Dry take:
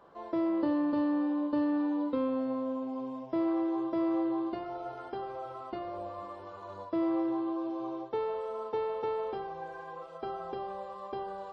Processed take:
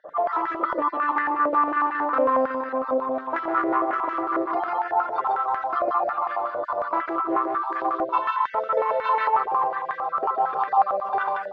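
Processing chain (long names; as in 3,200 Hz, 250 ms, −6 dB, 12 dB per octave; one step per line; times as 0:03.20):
time-frequency cells dropped at random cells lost 34%
comb filter 6.7 ms, depth 38%
in parallel at +1 dB: downward compressor, threshold −39 dBFS, peak gain reduction 14.5 dB
on the sum: sine wavefolder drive 6 dB, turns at −18 dBFS
formants moved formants +2 semitones
on a send: single-tap delay 149 ms −3 dB
on the sum: band-pass on a step sequencer 11 Hz 600–1,700 Hz
level +8 dB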